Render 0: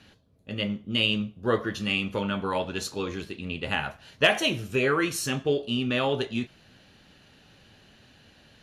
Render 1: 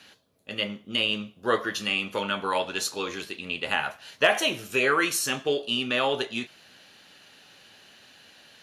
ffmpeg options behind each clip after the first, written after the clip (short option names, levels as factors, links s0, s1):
-filter_complex "[0:a]highpass=f=720:p=1,highshelf=f=7000:g=5.5,acrossover=split=1700[s0][s1];[s1]alimiter=limit=0.0841:level=0:latency=1:release=252[s2];[s0][s2]amix=inputs=2:normalize=0,volume=1.78"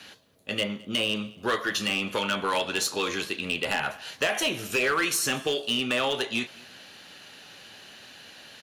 -filter_complex "[0:a]acrossover=split=600|1200[s0][s1][s2];[s0]acompressor=threshold=0.0178:ratio=4[s3];[s1]acompressor=threshold=0.00891:ratio=4[s4];[s2]acompressor=threshold=0.0355:ratio=4[s5];[s3][s4][s5]amix=inputs=3:normalize=0,volume=17.8,asoftclip=hard,volume=0.0562,aecho=1:1:214|428:0.0631|0.0189,volume=1.88"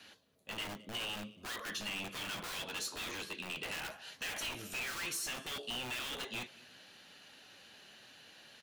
-filter_complex "[0:a]acrossover=split=1500[s0][s1];[s0]aeval=exprs='(mod(26.6*val(0)+1,2)-1)/26.6':c=same[s2];[s2][s1]amix=inputs=2:normalize=0,flanger=delay=2.8:depth=4.2:regen=-66:speed=0.67:shape=triangular,asoftclip=type=tanh:threshold=0.0473,volume=0.531"